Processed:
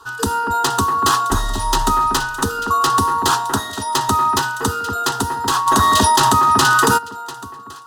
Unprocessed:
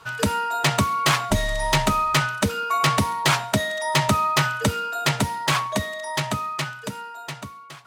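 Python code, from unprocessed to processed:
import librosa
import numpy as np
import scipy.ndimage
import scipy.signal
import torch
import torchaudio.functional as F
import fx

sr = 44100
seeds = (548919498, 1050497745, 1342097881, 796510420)

y = fx.fixed_phaser(x, sr, hz=600.0, stages=6)
y = fx.echo_alternate(y, sr, ms=237, hz=2100.0, feedback_pct=51, wet_db=-7.0)
y = fx.env_flatten(y, sr, amount_pct=100, at=(5.66, 6.97), fade=0.02)
y = y * librosa.db_to_amplitude(6.0)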